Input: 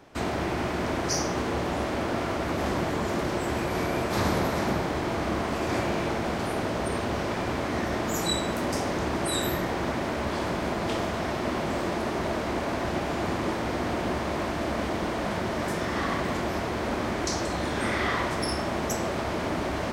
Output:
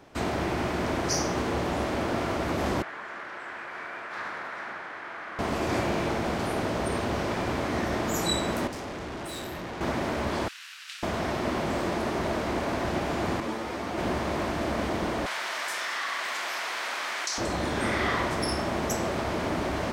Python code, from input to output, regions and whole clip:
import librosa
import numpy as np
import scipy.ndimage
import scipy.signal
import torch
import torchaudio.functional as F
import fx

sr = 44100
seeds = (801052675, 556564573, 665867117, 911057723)

y = fx.chain(x, sr, fx.cvsd(bps=64000),
    fx.bandpass_q(hz=1600.0, q=2.2), at=(2.82, 5.39))
y = fx.chain(y, sr, fx.high_shelf(hz=8700.0, db=-10.0),
    fx.tube_stage(drive_db=34.0, bias=0.65), at=(8.67, 9.81))
y = fx.chain(y, sr, fx.steep_highpass(hz=1900.0, slope=48),
    fx.ring_mod(carrier_hz=510.0), at=(10.48, 11.03))
y = fx.chain(y, sr, fx.low_shelf(hz=88.0, db=-12.0),
    fx.ensemble(), at=(13.4, 13.98))
y = fx.chain(y, sr, fx.highpass(hz=1400.0, slope=12),
    fx.high_shelf(hz=11000.0, db=-3.0),
    fx.env_flatten(amount_pct=70), at=(15.26, 17.38))